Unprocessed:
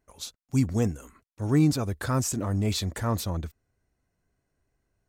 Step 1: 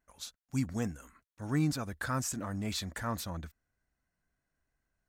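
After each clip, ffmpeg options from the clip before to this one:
-af "equalizer=f=100:t=o:w=0.67:g=-7,equalizer=f=400:t=o:w=0.67:g=-7,equalizer=f=1.6k:t=o:w=0.67:g=6,volume=-6dB"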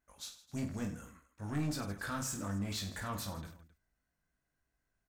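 -filter_complex "[0:a]asoftclip=type=tanh:threshold=-30.5dB,asplit=2[a][b];[b]aecho=0:1:20|50|95|162.5|263.8:0.631|0.398|0.251|0.158|0.1[c];[a][c]amix=inputs=2:normalize=0,volume=-3dB"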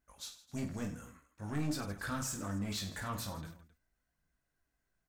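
-af "flanger=delay=0.1:depth=8.4:regen=70:speed=0.47:shape=triangular,volume=4.5dB"

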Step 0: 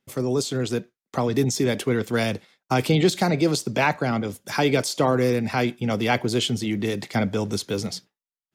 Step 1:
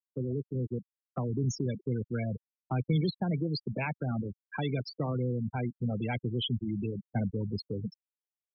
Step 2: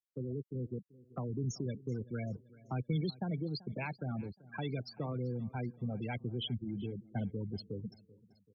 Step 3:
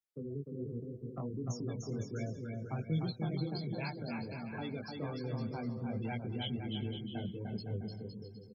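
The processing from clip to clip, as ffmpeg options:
-filter_complex "[0:a]afftfilt=real='re*gte(hypot(re,im),0.158)':imag='im*gte(hypot(re,im),0.158)':win_size=1024:overlap=0.75,acrossover=split=180|3000[a][b][c];[b]acompressor=threshold=-38dB:ratio=2.5[d];[a][d][c]amix=inputs=3:normalize=0,volume=-2.5dB"
-af "aecho=1:1:385|770|1155:0.0891|0.0428|0.0205,volume=-6dB"
-af "flanger=delay=17.5:depth=4.2:speed=1.3,aecho=1:1:300|510|657|759.9|831.9:0.631|0.398|0.251|0.158|0.1,volume=1dB"

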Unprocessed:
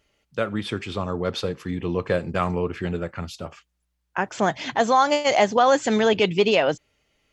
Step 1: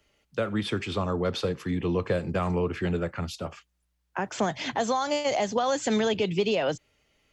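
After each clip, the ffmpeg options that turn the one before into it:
-filter_complex "[0:a]acrossover=split=140|3000[a][b][c];[b]acompressor=threshold=-22dB:ratio=6[d];[a][d][c]amix=inputs=3:normalize=0,acrossover=split=190|840[e][f][g];[g]alimiter=limit=-24dB:level=0:latency=1:release=38[h];[e][f][h]amix=inputs=3:normalize=0"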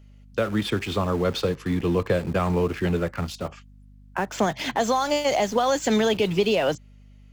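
-filter_complex "[0:a]asplit=2[a][b];[b]aeval=exprs='val(0)*gte(abs(val(0)),0.0224)':c=same,volume=-5dB[c];[a][c]amix=inputs=2:normalize=0,aeval=exprs='val(0)+0.00398*(sin(2*PI*50*n/s)+sin(2*PI*2*50*n/s)/2+sin(2*PI*3*50*n/s)/3+sin(2*PI*4*50*n/s)/4+sin(2*PI*5*50*n/s)/5)':c=same"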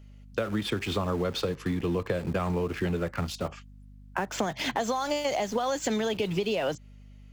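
-af "acompressor=threshold=-25dB:ratio=6"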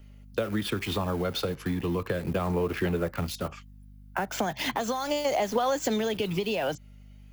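-filter_complex "[0:a]acrossover=split=320|6100[a][b][c];[b]aphaser=in_gain=1:out_gain=1:delay=1.4:decay=0.3:speed=0.36:type=sinusoidal[d];[c]aexciter=amount=1.3:drive=9.4:freq=10k[e];[a][d][e]amix=inputs=3:normalize=0"

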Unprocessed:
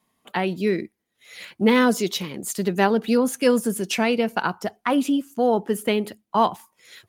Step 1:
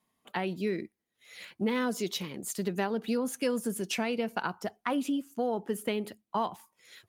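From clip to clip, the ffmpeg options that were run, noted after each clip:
-af "acompressor=threshold=-19dB:ratio=4,volume=-7dB"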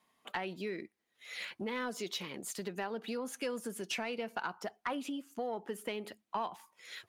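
-filter_complex "[0:a]acompressor=threshold=-44dB:ratio=2,asplit=2[a][b];[b]highpass=f=720:p=1,volume=12dB,asoftclip=type=tanh:threshold=-22dB[c];[a][c]amix=inputs=2:normalize=0,lowpass=f=4.2k:p=1,volume=-6dB"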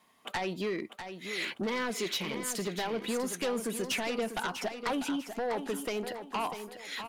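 -filter_complex "[0:a]aeval=exprs='0.0841*sin(PI/2*3.16*val(0)/0.0841)':c=same,asplit=2[a][b];[b]aecho=0:1:646|1292|1938|2584:0.355|0.114|0.0363|0.0116[c];[a][c]amix=inputs=2:normalize=0,volume=-6dB"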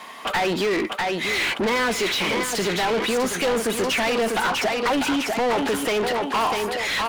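-filter_complex "[0:a]asplit=2[a][b];[b]highpass=f=720:p=1,volume=28dB,asoftclip=type=tanh:threshold=-24dB[c];[a][c]amix=inputs=2:normalize=0,lowpass=f=3.1k:p=1,volume=-6dB,volume=8dB"

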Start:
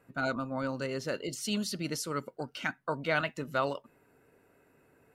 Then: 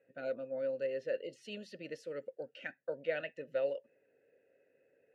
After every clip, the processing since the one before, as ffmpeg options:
-filter_complex "[0:a]asplit=3[a][b][c];[a]bandpass=f=530:t=q:w=8,volume=0dB[d];[b]bandpass=f=1.84k:t=q:w=8,volume=-6dB[e];[c]bandpass=f=2.48k:t=q:w=8,volume=-9dB[f];[d][e][f]amix=inputs=3:normalize=0,lowshelf=f=240:g=8,volume=2.5dB"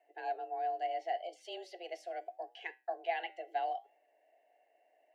-af "flanger=delay=7.6:depth=3.3:regen=-83:speed=0.73:shape=sinusoidal,afreqshift=180,volume=4.5dB"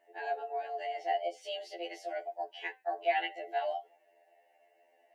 -af "afftfilt=real='re*2*eq(mod(b,4),0)':imag='im*2*eq(mod(b,4),0)':win_size=2048:overlap=0.75,volume=7.5dB"

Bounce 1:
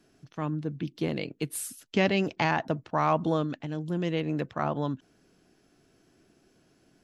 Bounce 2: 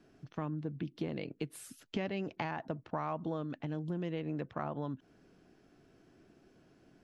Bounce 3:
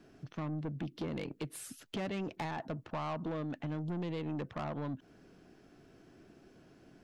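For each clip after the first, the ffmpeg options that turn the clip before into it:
-af "acompressor=threshold=-36dB:ratio=4,lowpass=f=2.3k:p=1,volume=1dB"
-af "asoftclip=type=tanh:threshold=-36.5dB,volume=4dB"

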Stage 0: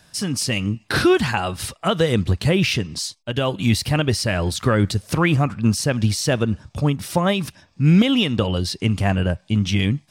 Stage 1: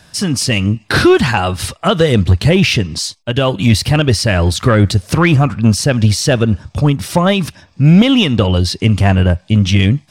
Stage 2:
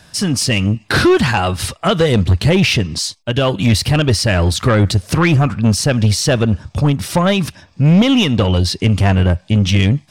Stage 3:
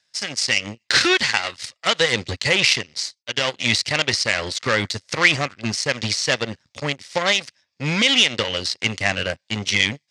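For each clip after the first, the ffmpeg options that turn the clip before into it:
-af "equalizer=f=85:w=2.3:g=3.5,acontrast=69,highshelf=f=10k:g=-6,volume=1.5dB"
-af "asoftclip=type=tanh:threshold=-5dB"
-af "aeval=exprs='0.531*(cos(1*acos(clip(val(0)/0.531,-1,1)))-cos(1*PI/2))+0.168*(cos(3*acos(clip(val(0)/0.531,-1,1)))-cos(3*PI/2))+0.00841*(cos(8*acos(clip(val(0)/0.531,-1,1)))-cos(8*PI/2))':c=same,crystalizer=i=10:c=0,highpass=130,equalizer=f=180:t=q:w=4:g=-6,equalizer=f=310:t=q:w=4:g=-3,equalizer=f=530:t=q:w=4:g=5,equalizer=f=2k:t=q:w=4:g=9,equalizer=f=4.5k:t=q:w=4:g=3,lowpass=f=6.7k:w=0.5412,lowpass=f=6.7k:w=1.3066,volume=-9.5dB"

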